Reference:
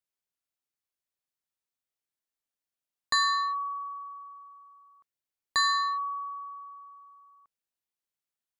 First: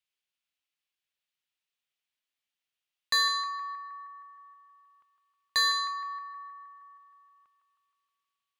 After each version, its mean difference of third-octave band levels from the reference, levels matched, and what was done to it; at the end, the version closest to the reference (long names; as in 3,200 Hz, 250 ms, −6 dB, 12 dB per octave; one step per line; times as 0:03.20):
3.0 dB: parametric band 2,900 Hz +14.5 dB 1.5 octaves
soft clipping −14.5 dBFS, distortion −15 dB
on a send: feedback echo with a band-pass in the loop 157 ms, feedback 69%, band-pass 1,300 Hz, level −7 dB
on the sum: level −4.5 dB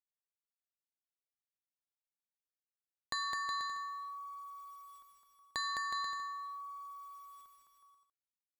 8.0 dB: bit reduction 11 bits
downward compressor 2 to 1, threshold −50 dBFS, peak gain reduction 14.5 dB
bouncing-ball delay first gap 210 ms, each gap 0.75×, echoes 5
level +1.5 dB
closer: first